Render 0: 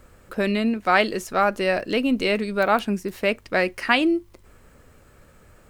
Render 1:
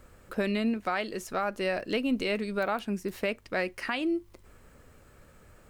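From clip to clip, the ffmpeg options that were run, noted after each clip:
-af "alimiter=limit=0.168:level=0:latency=1:release=404,volume=0.668"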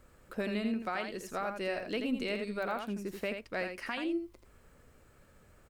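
-af "aecho=1:1:83:0.473,volume=0.501"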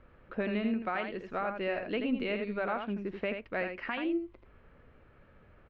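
-af "lowpass=f=3000:w=0.5412,lowpass=f=3000:w=1.3066,volume=1.26"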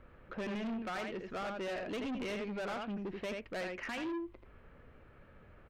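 -af "asoftclip=type=tanh:threshold=0.015,volume=1.12"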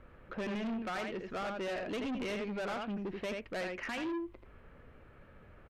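-af "aresample=32000,aresample=44100,volume=1.19"

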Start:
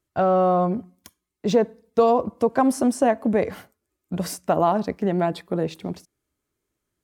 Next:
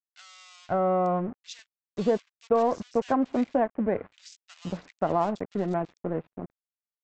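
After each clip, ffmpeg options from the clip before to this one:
-filter_complex "[0:a]aresample=16000,aeval=exprs='sgn(val(0))*max(abs(val(0))-0.0178,0)':c=same,aresample=44100,acrossover=split=2300[s0][s1];[s0]adelay=530[s2];[s2][s1]amix=inputs=2:normalize=0,volume=0.596"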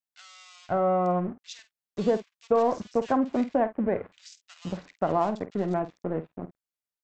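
-filter_complex "[0:a]asplit=2[s0][s1];[s1]adelay=50,volume=0.224[s2];[s0][s2]amix=inputs=2:normalize=0"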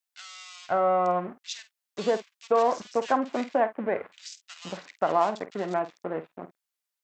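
-af "highpass=f=980:p=1,volume=2.11"

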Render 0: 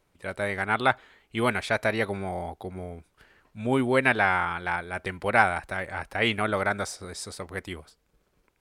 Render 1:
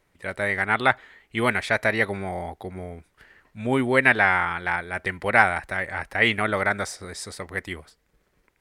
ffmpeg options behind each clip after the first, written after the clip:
-af "equalizer=f=1900:w=4:g=8,volume=1.19"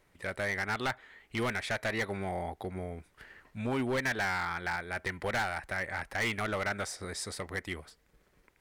-af "acompressor=threshold=0.0112:ratio=1.5,asoftclip=type=hard:threshold=0.0447"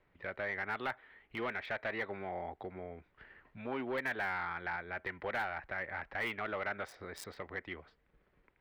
-filter_complex "[0:a]acrossover=split=260|3500[s0][s1][s2];[s0]acompressor=threshold=0.00355:ratio=6[s3];[s2]acrusher=bits=4:mix=0:aa=0.5[s4];[s3][s1][s4]amix=inputs=3:normalize=0,volume=0.631"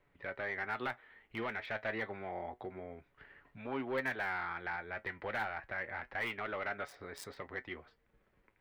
-af "flanger=delay=7:depth=2.3:regen=62:speed=0.29:shape=sinusoidal,volume=1.5"

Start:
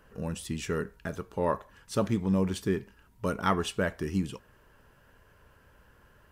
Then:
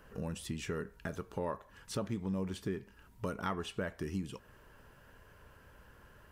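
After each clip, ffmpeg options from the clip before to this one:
-filter_complex "[0:a]acrossover=split=3700[s0][s1];[s1]alimiter=level_in=3.76:limit=0.0631:level=0:latency=1:release=266,volume=0.266[s2];[s0][s2]amix=inputs=2:normalize=0,acompressor=threshold=0.0112:ratio=2.5,volume=1.12"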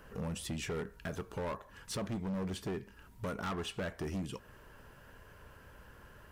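-af "asoftclip=type=hard:threshold=0.015,volume=1.41"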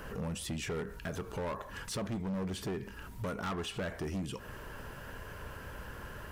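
-af "alimiter=level_in=8.91:limit=0.0631:level=0:latency=1:release=59,volume=0.112,volume=3.35"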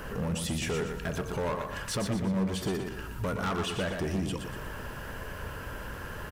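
-af "aecho=1:1:120|240|360|480|600:0.501|0.205|0.0842|0.0345|0.0142,volume=1.78"

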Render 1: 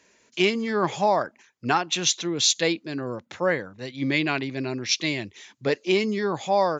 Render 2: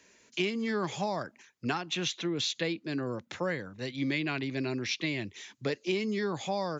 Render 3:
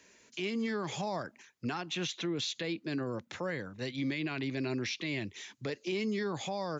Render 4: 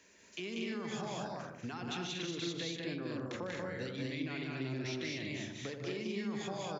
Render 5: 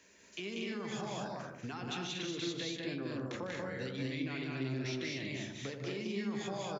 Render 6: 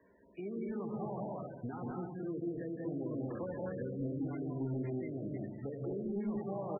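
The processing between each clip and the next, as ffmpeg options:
-filter_complex "[0:a]equalizer=f=770:t=o:w=1.6:g=-3.5,acrossover=split=220|3400[s0][s1][s2];[s0]acompressor=threshold=0.0126:ratio=4[s3];[s1]acompressor=threshold=0.0282:ratio=4[s4];[s2]acompressor=threshold=0.00631:ratio=4[s5];[s3][s4][s5]amix=inputs=3:normalize=0"
-af "alimiter=level_in=1.33:limit=0.0631:level=0:latency=1:release=39,volume=0.75"
-filter_complex "[0:a]asplit=2[s0][s1];[s1]adelay=83,lowpass=f=940:p=1,volume=0.501,asplit=2[s2][s3];[s3]adelay=83,lowpass=f=940:p=1,volume=0.49,asplit=2[s4][s5];[s5]adelay=83,lowpass=f=940:p=1,volume=0.49,asplit=2[s6][s7];[s7]adelay=83,lowpass=f=940:p=1,volume=0.49,asplit=2[s8][s9];[s9]adelay=83,lowpass=f=940:p=1,volume=0.49,asplit=2[s10][s11];[s11]adelay=83,lowpass=f=940:p=1,volume=0.49[s12];[s2][s4][s6][s8][s10][s12]amix=inputs=6:normalize=0[s13];[s0][s13]amix=inputs=2:normalize=0,acompressor=threshold=0.0158:ratio=6,asplit=2[s14][s15];[s15]aecho=0:1:151.6|189.5|236.2:0.282|0.794|0.631[s16];[s14][s16]amix=inputs=2:normalize=0,volume=0.75"
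-filter_complex "[0:a]asplit=2[s0][s1];[s1]adelay=15,volume=0.282[s2];[s0][s2]amix=inputs=2:normalize=0"
-af "asoftclip=type=tanh:threshold=0.0266,firequalizer=gain_entry='entry(540,0);entry(3200,-23);entry(7700,11)':delay=0.05:min_phase=1,volume=1.41" -ar 24000 -c:a libmp3lame -b:a 8k

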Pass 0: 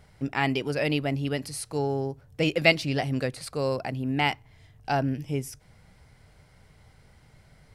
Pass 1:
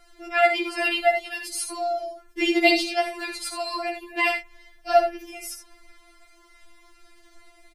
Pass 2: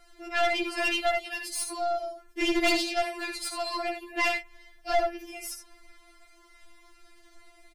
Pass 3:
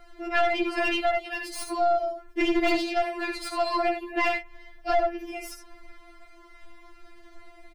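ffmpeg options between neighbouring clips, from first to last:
-filter_complex "[0:a]asplit=2[s0][s1];[s1]aecho=0:1:62|77:0.355|0.335[s2];[s0][s2]amix=inputs=2:normalize=0,afftfilt=real='re*4*eq(mod(b,16),0)':imag='im*4*eq(mod(b,16),0)':win_size=2048:overlap=0.75,volume=2.37"
-af "aeval=exprs='(tanh(10*val(0)+0.5)-tanh(0.5))/10':c=same"
-af "equalizer=f=10000:t=o:w=2.5:g=-14.5,alimiter=limit=0.0708:level=0:latency=1:release=396,volume=2.51"

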